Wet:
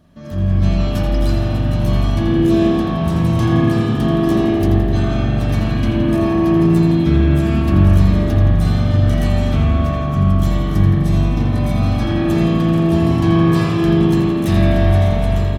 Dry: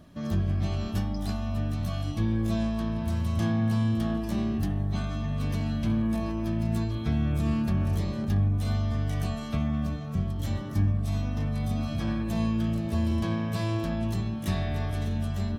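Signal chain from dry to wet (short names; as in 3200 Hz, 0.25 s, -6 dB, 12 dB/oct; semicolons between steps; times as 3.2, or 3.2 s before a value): AGC gain up to 10 dB; frequency-shifting echo 84 ms, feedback 61%, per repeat +35 Hz, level -9 dB; spring tank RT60 2.3 s, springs 42 ms, chirp 70 ms, DRR -4 dB; gain -2 dB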